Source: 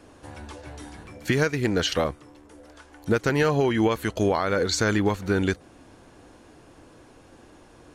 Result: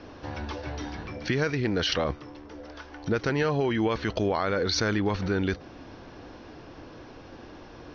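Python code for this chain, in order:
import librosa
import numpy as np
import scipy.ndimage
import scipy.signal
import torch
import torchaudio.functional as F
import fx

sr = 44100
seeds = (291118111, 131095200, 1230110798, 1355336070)

p1 = scipy.signal.sosfilt(scipy.signal.butter(16, 5900.0, 'lowpass', fs=sr, output='sos'), x)
p2 = fx.over_compress(p1, sr, threshold_db=-32.0, ratio=-1.0)
p3 = p1 + (p2 * 10.0 ** (0.5 / 20.0))
y = p3 * 10.0 ** (-5.5 / 20.0)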